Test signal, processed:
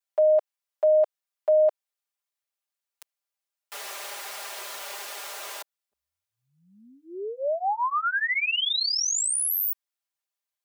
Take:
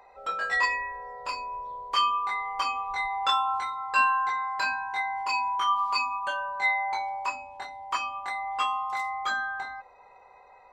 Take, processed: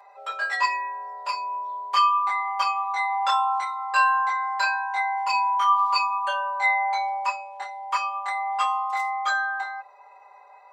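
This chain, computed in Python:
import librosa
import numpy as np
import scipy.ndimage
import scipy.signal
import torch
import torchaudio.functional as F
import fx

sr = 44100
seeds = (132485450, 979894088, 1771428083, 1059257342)

y = scipy.signal.sosfilt(scipy.signal.butter(4, 520.0, 'highpass', fs=sr, output='sos'), x)
y = y + 0.99 * np.pad(y, (int(5.0 * sr / 1000.0), 0))[:len(y)]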